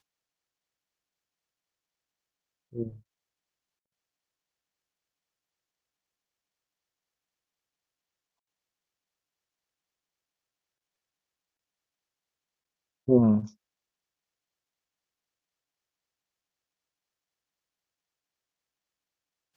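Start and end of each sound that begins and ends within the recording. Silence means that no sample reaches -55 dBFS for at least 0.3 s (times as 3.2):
2.72–3.01
13.07–13.53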